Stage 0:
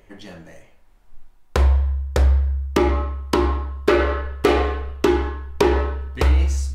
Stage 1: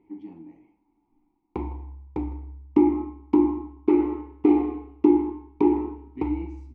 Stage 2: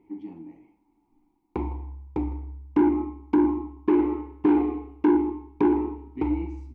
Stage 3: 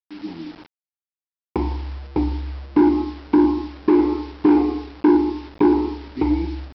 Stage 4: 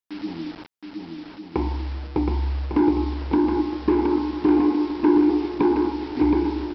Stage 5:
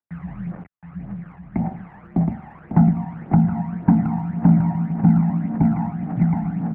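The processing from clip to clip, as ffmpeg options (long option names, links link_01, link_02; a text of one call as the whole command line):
ffmpeg -i in.wav -filter_complex "[0:a]asplit=3[link_01][link_02][link_03];[link_01]bandpass=frequency=300:width_type=q:width=8,volume=0dB[link_04];[link_02]bandpass=frequency=870:width_type=q:width=8,volume=-6dB[link_05];[link_03]bandpass=frequency=2240:width_type=q:width=8,volume=-9dB[link_06];[link_04][link_05][link_06]amix=inputs=3:normalize=0,tiltshelf=frequency=1300:gain=9.5,aecho=1:1:159:0.0944" out.wav
ffmpeg -i in.wav -af "asoftclip=type=tanh:threshold=-15.5dB,volume=2dB" out.wav
ffmpeg -i in.wav -af "dynaudnorm=framelen=130:gausssize=3:maxgain=15dB,aresample=11025,acrusher=bits=5:mix=0:aa=0.000001,aresample=44100,volume=-6.5dB" out.wav
ffmpeg -i in.wav -filter_complex "[0:a]acompressor=threshold=-32dB:ratio=1.5,asplit=2[link_01][link_02];[link_02]aecho=0:1:720|1152|1411|1567|1660:0.631|0.398|0.251|0.158|0.1[link_03];[link_01][link_03]amix=inputs=2:normalize=0,volume=3dB" out.wav
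ffmpeg -i in.wav -af "highpass=frequency=210:width_type=q:width=0.5412,highpass=frequency=210:width_type=q:width=1.307,lowpass=frequency=2100:width_type=q:width=0.5176,lowpass=frequency=2100:width_type=q:width=0.7071,lowpass=frequency=2100:width_type=q:width=1.932,afreqshift=-130,aphaser=in_gain=1:out_gain=1:delay=1.2:decay=0.6:speed=1.8:type=triangular,volume=-2dB" out.wav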